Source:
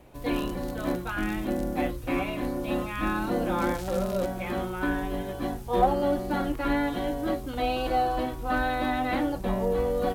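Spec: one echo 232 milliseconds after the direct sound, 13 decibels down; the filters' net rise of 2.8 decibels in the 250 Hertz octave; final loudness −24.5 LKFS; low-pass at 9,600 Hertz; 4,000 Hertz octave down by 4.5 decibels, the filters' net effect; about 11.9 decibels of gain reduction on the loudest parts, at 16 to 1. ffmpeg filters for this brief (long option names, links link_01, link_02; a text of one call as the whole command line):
ffmpeg -i in.wav -af "lowpass=9600,equalizer=frequency=250:width_type=o:gain=3.5,equalizer=frequency=4000:width_type=o:gain=-6,acompressor=threshold=-27dB:ratio=16,aecho=1:1:232:0.224,volume=7.5dB" out.wav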